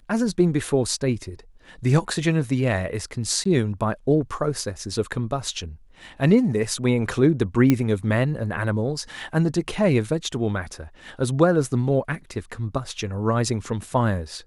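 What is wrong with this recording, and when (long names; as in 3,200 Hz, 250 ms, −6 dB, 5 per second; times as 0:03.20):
0:03.44–0:03.45: drop-out 14 ms
0:07.70: click −6 dBFS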